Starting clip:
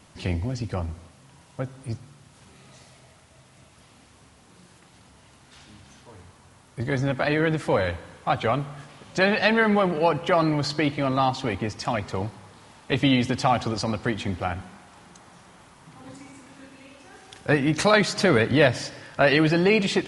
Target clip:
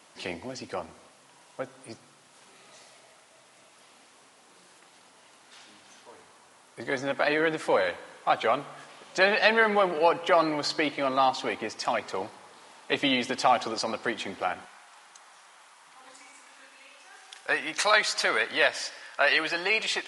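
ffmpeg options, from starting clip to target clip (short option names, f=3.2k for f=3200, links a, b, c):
-af "asetnsamples=n=441:p=0,asendcmd='14.65 highpass f 850',highpass=400"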